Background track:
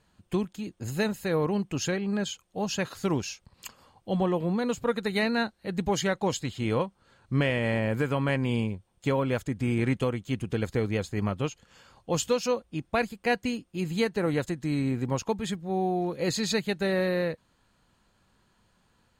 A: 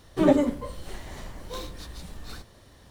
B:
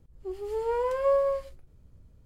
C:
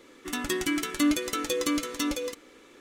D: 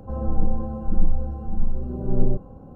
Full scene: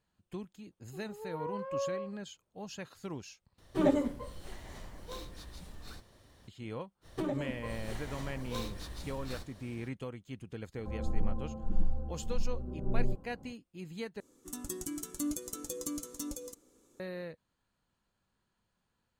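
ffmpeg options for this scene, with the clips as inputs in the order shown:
-filter_complex "[1:a]asplit=2[s0][s1];[0:a]volume=0.2[s2];[2:a]bandpass=f=870:t=q:w=1.1:csg=0[s3];[s1]acompressor=threshold=0.0501:ratio=8:attack=3.3:release=378:knee=1:detection=rms[s4];[3:a]firequalizer=gain_entry='entry(140,0);entry(310,-7);entry(1200,-13);entry(2000,-23);entry(6800,1)':delay=0.05:min_phase=1[s5];[s2]asplit=3[s6][s7][s8];[s6]atrim=end=3.584[s9];[s0]atrim=end=2.9,asetpts=PTS-STARTPTS,volume=0.422[s10];[s7]atrim=start=6.476:end=14.204[s11];[s5]atrim=end=2.8,asetpts=PTS-STARTPTS,volume=0.562[s12];[s8]atrim=start=16.996[s13];[s3]atrim=end=2.25,asetpts=PTS-STARTPTS,volume=0.376,afade=t=in:d=0.004:c=hsin,afade=t=out:st=2.246:d=0.004:c=hsin,adelay=680[s14];[s4]atrim=end=2.9,asetpts=PTS-STARTPTS,volume=0.708,afade=t=in:d=0.05,afade=t=out:st=2.85:d=0.05,adelay=7010[s15];[4:a]atrim=end=2.75,asetpts=PTS-STARTPTS,volume=0.299,afade=t=in:d=0.004:c=hsin,afade=t=out:st=2.746:d=0.004:c=hsin,adelay=10780[s16];[s9][s10]acrossfade=d=0.004:c1=hsin:c2=hsin[s17];[s17][s11]acrossfade=d=0.004:c1=hsin:c2=hsin[s18];[s18][s12]acrossfade=d=0.004:c1=hsin:c2=hsin[s19];[s19][s13]acrossfade=d=0.004:c1=hsin:c2=hsin[s20];[s20][s14][s15][s16]amix=inputs=4:normalize=0"

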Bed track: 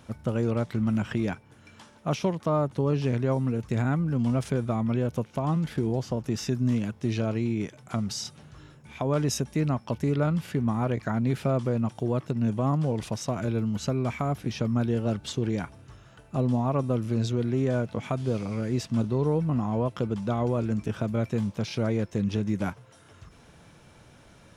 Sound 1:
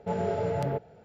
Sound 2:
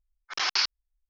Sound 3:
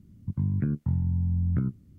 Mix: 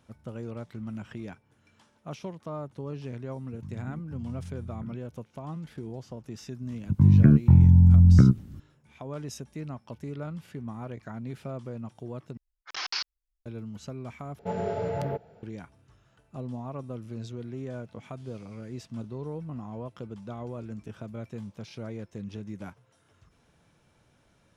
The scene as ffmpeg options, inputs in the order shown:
-filter_complex "[3:a]asplit=2[s0][s1];[0:a]volume=0.266[s2];[s1]dynaudnorm=f=220:g=3:m=4.73[s3];[s2]asplit=3[s4][s5][s6];[s4]atrim=end=12.374[s7];[2:a]atrim=end=1.09,asetpts=PTS-STARTPTS,volume=0.473[s8];[s5]atrim=start=13.456:end=14.394[s9];[1:a]atrim=end=1.04,asetpts=PTS-STARTPTS,volume=0.841[s10];[s6]atrim=start=15.426[s11];[s0]atrim=end=1.98,asetpts=PTS-STARTPTS,volume=0.188,afade=t=in:d=0.004:c=hsin,afade=t=out:st=1.976:d=0.004:c=hsin,adelay=143325S[s12];[s3]atrim=end=1.98,asetpts=PTS-STARTPTS,volume=0.794,afade=t=in:d=0.004:c=hsin,afade=t=out:st=1.976:d=0.004:c=hsin,adelay=6620[s13];[s7][s8]acrossfade=d=0.004:c1=hsin:c2=hsin[s14];[s14][s9]acrossfade=d=0.004:c1=hsin:c2=hsin[s15];[s15][s10]acrossfade=d=0.004:c1=hsin:c2=hsin[s16];[s16][s11]acrossfade=d=0.004:c1=hsin:c2=hsin[s17];[s17][s12][s13]amix=inputs=3:normalize=0"

